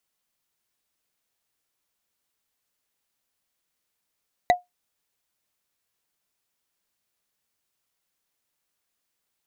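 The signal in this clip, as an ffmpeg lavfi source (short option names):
-f lavfi -i "aevalsrc='0.316*pow(10,-3*t/0.16)*sin(2*PI*716*t)+0.158*pow(10,-3*t/0.047)*sin(2*PI*1974*t)+0.0794*pow(10,-3*t/0.021)*sin(2*PI*3869.3*t)+0.0398*pow(10,-3*t/0.012)*sin(2*PI*6396*t)+0.02*pow(10,-3*t/0.007)*sin(2*PI*9551.4*t)':d=0.45:s=44100"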